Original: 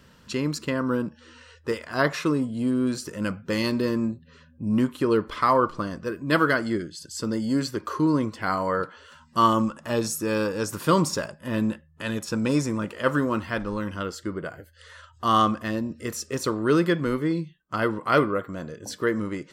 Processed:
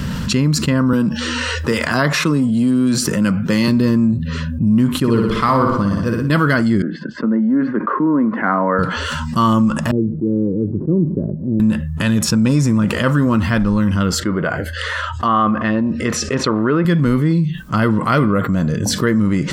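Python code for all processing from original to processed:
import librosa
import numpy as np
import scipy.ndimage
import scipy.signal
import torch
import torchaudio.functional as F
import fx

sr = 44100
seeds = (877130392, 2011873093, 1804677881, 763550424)

y = fx.chain(x, sr, fx.highpass(hz=210.0, slope=6),
    fx.band_squash(depth_pct=40), at=(0.93, 3.68))
y = fx.chain(y, sr, fx.room_flutter(wall_m=10.3, rt60_s=0.77),
    fx.upward_expand(threshold_db=-31.0, expansion=1.5), at=(4.98, 6.3))
y = fx.chain(y, sr, fx.cheby1_bandpass(low_hz=230.0, high_hz=1800.0, order=3),
    fx.air_absorb(metres=54.0),
    fx.band_widen(depth_pct=40), at=(6.82, 8.79))
y = fx.chain(y, sr, fx.ladder_lowpass(hz=410.0, resonance_pct=65),
    fx.band_widen(depth_pct=40), at=(9.91, 11.6))
y = fx.chain(y, sr, fx.env_lowpass_down(base_hz=2100.0, full_db=-21.0),
    fx.bass_treble(bass_db=-12, treble_db=-10), at=(14.2, 16.85))
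y = fx.low_shelf_res(y, sr, hz=270.0, db=8.0, q=1.5)
y = fx.env_flatten(y, sr, amount_pct=70)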